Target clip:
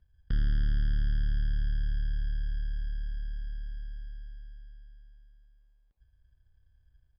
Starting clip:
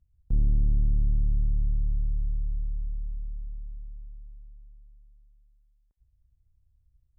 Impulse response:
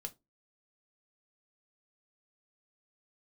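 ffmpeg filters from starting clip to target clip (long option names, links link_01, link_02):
-filter_complex "[0:a]asplit=2[link_01][link_02];[link_02]acompressor=threshold=-35dB:ratio=6,volume=3dB[link_03];[link_01][link_03]amix=inputs=2:normalize=0,acrusher=samples=27:mix=1:aa=0.000001,aresample=11025,aresample=44100,volume=-6dB"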